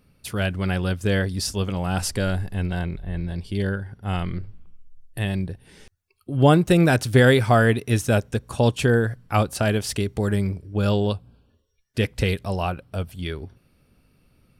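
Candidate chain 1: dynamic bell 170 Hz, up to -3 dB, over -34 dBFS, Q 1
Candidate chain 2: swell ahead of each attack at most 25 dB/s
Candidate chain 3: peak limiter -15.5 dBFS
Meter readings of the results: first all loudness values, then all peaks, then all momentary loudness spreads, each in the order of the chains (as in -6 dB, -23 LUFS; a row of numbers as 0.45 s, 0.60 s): -24.0 LUFS, -21.0 LUFS, -27.0 LUFS; -5.5 dBFS, -2.0 dBFS, -15.5 dBFS; 14 LU, 15 LU, 8 LU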